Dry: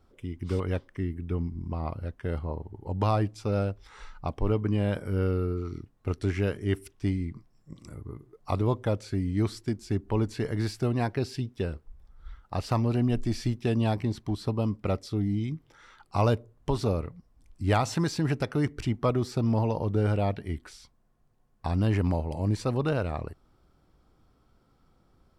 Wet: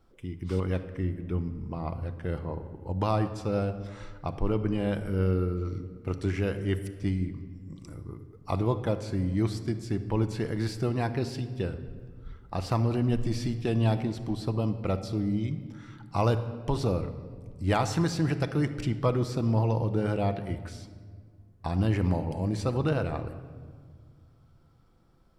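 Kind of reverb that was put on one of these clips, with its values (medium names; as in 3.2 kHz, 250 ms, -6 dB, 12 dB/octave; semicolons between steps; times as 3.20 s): simulated room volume 2600 m³, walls mixed, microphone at 0.73 m; trim -1 dB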